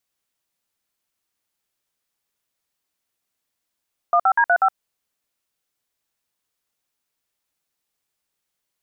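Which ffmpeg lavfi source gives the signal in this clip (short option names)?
-f lavfi -i "aevalsrc='0.168*clip(min(mod(t,0.122),0.067-mod(t,0.122))/0.002,0,1)*(eq(floor(t/0.122),0)*(sin(2*PI*697*mod(t,0.122))+sin(2*PI*1209*mod(t,0.122)))+eq(floor(t/0.122),1)*(sin(2*PI*770*mod(t,0.122))+sin(2*PI*1336*mod(t,0.122)))+eq(floor(t/0.122),2)*(sin(2*PI*941*mod(t,0.122))+sin(2*PI*1633*mod(t,0.122)))+eq(floor(t/0.122),3)*(sin(2*PI*697*mod(t,0.122))+sin(2*PI*1477*mod(t,0.122)))+eq(floor(t/0.122),4)*(sin(2*PI*770*mod(t,0.122))+sin(2*PI*1336*mod(t,0.122))))':d=0.61:s=44100"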